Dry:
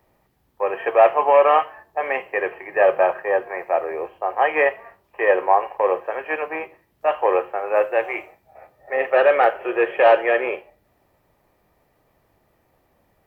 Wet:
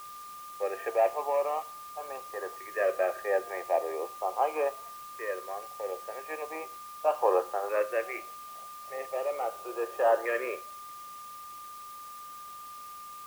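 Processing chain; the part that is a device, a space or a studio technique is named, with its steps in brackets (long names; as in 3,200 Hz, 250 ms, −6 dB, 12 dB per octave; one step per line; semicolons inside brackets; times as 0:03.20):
shortwave radio (band-pass filter 300–2,500 Hz; amplitude tremolo 0.27 Hz, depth 70%; auto-filter notch saw up 0.39 Hz 740–2,500 Hz; steady tone 1,200 Hz −37 dBFS; white noise bed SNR 20 dB)
level −5.5 dB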